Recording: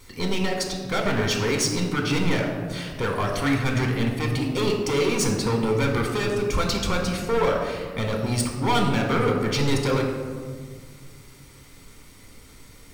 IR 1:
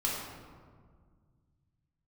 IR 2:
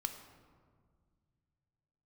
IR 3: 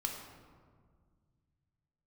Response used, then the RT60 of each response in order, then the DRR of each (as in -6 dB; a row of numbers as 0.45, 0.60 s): 3; 1.8, 1.9, 1.8 s; -5.0, 6.5, 1.0 dB